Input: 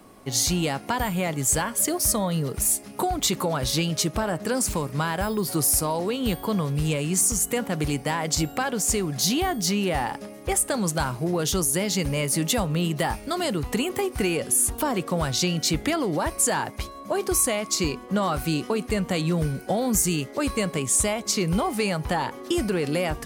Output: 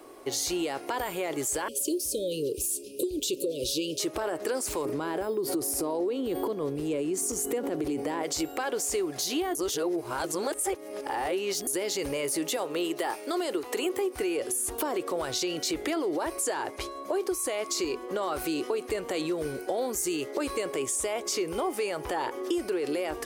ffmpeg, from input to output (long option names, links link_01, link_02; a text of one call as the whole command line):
ffmpeg -i in.wav -filter_complex "[0:a]asettb=1/sr,asplit=3[link_01][link_02][link_03];[link_01]atrim=end=1.684[link_04];[link_02]atrim=start=1.68:end=4,asetpts=PTS-STARTPTS,afade=type=in:duration=0.004:curve=qsin,afade=type=out:start_time=2.316:duration=0.004:curve=qsin,asuperstop=centerf=1200:order=20:qfactor=0.61[link_05];[link_03]atrim=start=3.996[link_06];[link_04][link_05]acrossfade=duration=0.004:curve1=hsin:curve2=qsin[link_07];[link_07][link_06]acrossfade=duration=0.004:curve1=qsin:curve2=hsin,asettb=1/sr,asplit=3[link_08][link_09][link_10];[link_08]atrim=end=4.854[link_11];[link_09]atrim=start=4.85:end=8.23,asetpts=PTS-STARTPTS,afade=type=in:duration=0.004:curve=qsin,afade=type=out:start_time=3.376:duration=0.004:curve=qsin,equalizer=frequency=240:width=0.52:gain=13.5[link_12];[link_10]atrim=start=8.226[link_13];[link_11][link_12]acrossfade=duration=0.004:curve1=hsin:curve2=qsin[link_14];[link_14][link_13]acrossfade=duration=0.004:curve1=qsin:curve2=hsin,asettb=1/sr,asplit=3[link_15][link_16][link_17];[link_15]atrim=end=12.564[link_18];[link_16]atrim=start=12.56:end=13.86,asetpts=PTS-STARTPTS,afade=type=in:duration=0.004:curve=qsin,afade=type=out:start_time=1.296:duration=0.004:curve=qsin,highpass=250[link_19];[link_17]atrim=start=13.856[link_20];[link_18][link_19]acrossfade=duration=0.004:curve1=hsin:curve2=qsin[link_21];[link_21][link_20]acrossfade=duration=0.004:curve1=qsin:curve2=hsin,asettb=1/sr,asplit=3[link_22][link_23][link_24];[link_22]atrim=end=16.464[link_25];[link_23]atrim=start=16.46:end=17.02,asetpts=PTS-STARTPTS,afade=type=in:duration=0.004:curve=qsin,afade=type=out:start_time=0.556:duration=0.004:curve=qsin,lowpass=12000[link_26];[link_24]atrim=start=17.016[link_27];[link_25][link_26]acrossfade=duration=0.004:curve1=hsin:curve2=qsin[link_28];[link_28][link_27]acrossfade=duration=0.004:curve1=qsin:curve2=hsin,asettb=1/sr,asplit=3[link_29][link_30][link_31];[link_29]atrim=end=20.644[link_32];[link_30]atrim=start=20.64:end=22.54,asetpts=PTS-STARTPTS,afade=type=in:duration=0.004:curve=qsin,afade=type=out:start_time=1.896:duration=0.004:curve=qsin,bandreject=frequency=4100:width=11[link_33];[link_31]atrim=start=22.536[link_34];[link_32][link_33]acrossfade=duration=0.004:curve1=hsin:curve2=qsin[link_35];[link_35][link_34]acrossfade=duration=0.004:curve1=qsin:curve2=hsin,asplit=3[link_36][link_37][link_38];[link_36]atrim=end=9.552[link_39];[link_37]atrim=start=9.548:end=11.672,asetpts=PTS-STARTPTS,areverse[link_40];[link_38]atrim=start=11.668[link_41];[link_39][link_40]acrossfade=duration=0.004:curve1=hsin:curve2=hsin[link_42];[link_42][link_41]acrossfade=duration=0.004:curve1=hsin:curve2=hsin,alimiter=limit=-19dB:level=0:latency=1:release=15,lowshelf=frequency=260:width_type=q:width=3:gain=-10.5,acompressor=threshold=-26dB:ratio=6" out.wav